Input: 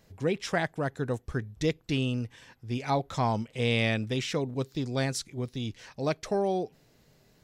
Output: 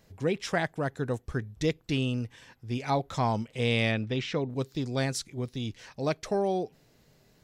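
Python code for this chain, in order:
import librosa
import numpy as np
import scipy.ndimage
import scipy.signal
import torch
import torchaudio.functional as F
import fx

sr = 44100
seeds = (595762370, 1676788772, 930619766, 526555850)

y = fx.lowpass(x, sr, hz=4100.0, slope=12, at=(3.91, 4.49), fade=0.02)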